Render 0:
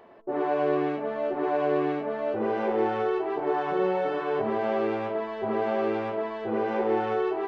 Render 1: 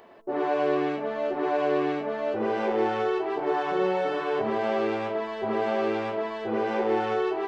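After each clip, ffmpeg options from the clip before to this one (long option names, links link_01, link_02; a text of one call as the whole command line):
ffmpeg -i in.wav -af "highshelf=frequency=3400:gain=11,bandreject=frequency=50:width_type=h:width=6,bandreject=frequency=100:width_type=h:width=6,bandreject=frequency=150:width_type=h:width=6" out.wav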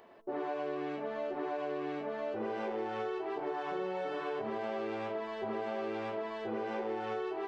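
ffmpeg -i in.wav -af "acompressor=threshold=-27dB:ratio=6,volume=-6dB" out.wav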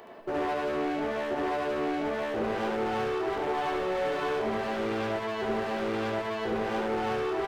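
ffmpeg -i in.wav -filter_complex "[0:a]acrossover=split=110[link_01][link_02];[link_02]asoftclip=type=hard:threshold=-37.5dB[link_03];[link_01][link_03]amix=inputs=2:normalize=0,aecho=1:1:72:0.631,volume=9dB" out.wav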